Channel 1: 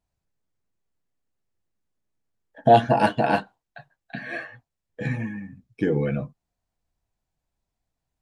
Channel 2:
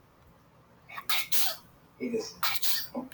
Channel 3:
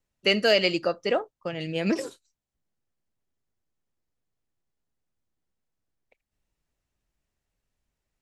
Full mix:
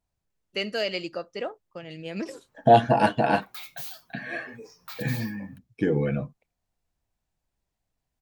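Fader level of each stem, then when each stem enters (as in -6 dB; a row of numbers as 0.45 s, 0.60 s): -1.0 dB, -13.0 dB, -7.5 dB; 0.00 s, 2.45 s, 0.30 s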